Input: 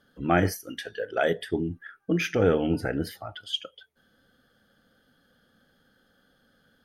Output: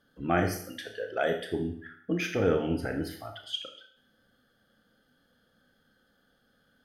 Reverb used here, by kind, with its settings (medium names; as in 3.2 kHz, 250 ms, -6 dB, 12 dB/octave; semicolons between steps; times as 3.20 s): Schroeder reverb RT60 0.6 s, combs from 25 ms, DRR 5 dB; trim -4.5 dB